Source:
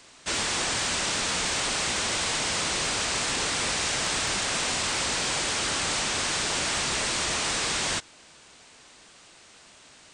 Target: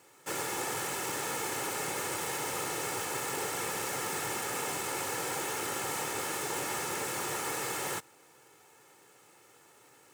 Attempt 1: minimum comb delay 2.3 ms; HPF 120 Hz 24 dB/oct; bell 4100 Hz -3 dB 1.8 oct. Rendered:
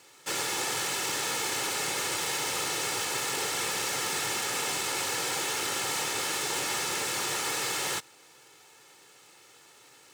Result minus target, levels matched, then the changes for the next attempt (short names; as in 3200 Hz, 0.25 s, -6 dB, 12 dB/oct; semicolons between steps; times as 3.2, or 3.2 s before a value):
4000 Hz band +4.5 dB
change: bell 4100 Hz -13.5 dB 1.8 oct